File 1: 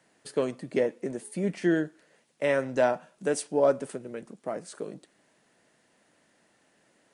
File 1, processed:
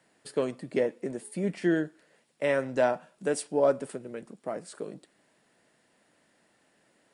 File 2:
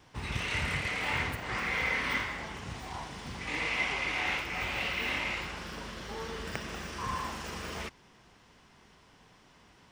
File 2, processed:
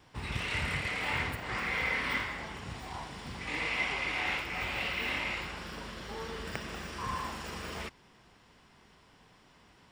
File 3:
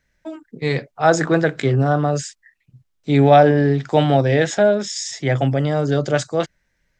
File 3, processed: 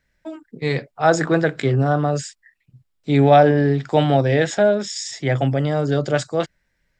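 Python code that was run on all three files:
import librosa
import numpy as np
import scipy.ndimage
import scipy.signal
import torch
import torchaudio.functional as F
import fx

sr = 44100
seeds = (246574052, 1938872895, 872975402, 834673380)

y = fx.notch(x, sr, hz=6200.0, q=10.0)
y = y * 10.0 ** (-1.0 / 20.0)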